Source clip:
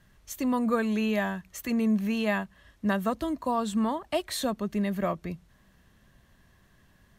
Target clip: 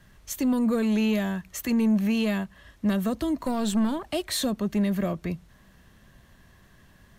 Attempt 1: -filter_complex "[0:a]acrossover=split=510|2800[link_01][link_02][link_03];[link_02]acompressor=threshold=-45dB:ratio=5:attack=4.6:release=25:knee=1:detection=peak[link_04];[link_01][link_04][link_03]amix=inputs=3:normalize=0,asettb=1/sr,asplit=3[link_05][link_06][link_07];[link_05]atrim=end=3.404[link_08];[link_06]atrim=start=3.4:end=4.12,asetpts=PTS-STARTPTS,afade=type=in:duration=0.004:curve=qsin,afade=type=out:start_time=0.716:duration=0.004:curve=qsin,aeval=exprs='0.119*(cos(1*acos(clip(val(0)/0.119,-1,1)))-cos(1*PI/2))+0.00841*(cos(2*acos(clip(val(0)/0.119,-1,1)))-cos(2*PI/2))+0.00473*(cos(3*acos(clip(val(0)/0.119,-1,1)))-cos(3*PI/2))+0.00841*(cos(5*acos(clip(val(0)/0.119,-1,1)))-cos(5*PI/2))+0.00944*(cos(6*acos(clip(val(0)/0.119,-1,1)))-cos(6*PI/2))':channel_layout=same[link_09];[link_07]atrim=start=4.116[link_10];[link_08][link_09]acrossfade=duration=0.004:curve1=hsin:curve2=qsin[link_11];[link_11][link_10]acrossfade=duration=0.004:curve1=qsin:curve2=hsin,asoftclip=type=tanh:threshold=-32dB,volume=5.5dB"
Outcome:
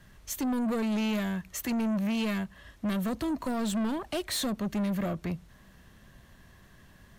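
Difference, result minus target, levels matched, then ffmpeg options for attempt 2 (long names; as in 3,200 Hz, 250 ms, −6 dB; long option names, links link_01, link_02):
soft clipping: distortion +10 dB
-filter_complex "[0:a]acrossover=split=510|2800[link_01][link_02][link_03];[link_02]acompressor=threshold=-45dB:ratio=5:attack=4.6:release=25:knee=1:detection=peak[link_04];[link_01][link_04][link_03]amix=inputs=3:normalize=0,asettb=1/sr,asplit=3[link_05][link_06][link_07];[link_05]atrim=end=3.404[link_08];[link_06]atrim=start=3.4:end=4.12,asetpts=PTS-STARTPTS,afade=type=in:duration=0.004:curve=qsin,afade=type=out:start_time=0.716:duration=0.004:curve=qsin,aeval=exprs='0.119*(cos(1*acos(clip(val(0)/0.119,-1,1)))-cos(1*PI/2))+0.00841*(cos(2*acos(clip(val(0)/0.119,-1,1)))-cos(2*PI/2))+0.00473*(cos(3*acos(clip(val(0)/0.119,-1,1)))-cos(3*PI/2))+0.00841*(cos(5*acos(clip(val(0)/0.119,-1,1)))-cos(5*PI/2))+0.00944*(cos(6*acos(clip(val(0)/0.119,-1,1)))-cos(6*PI/2))':channel_layout=same[link_09];[link_07]atrim=start=4.116[link_10];[link_08][link_09]acrossfade=duration=0.004:curve1=hsin:curve2=qsin[link_11];[link_11][link_10]acrossfade=duration=0.004:curve1=qsin:curve2=hsin,asoftclip=type=tanh:threshold=-22dB,volume=5.5dB"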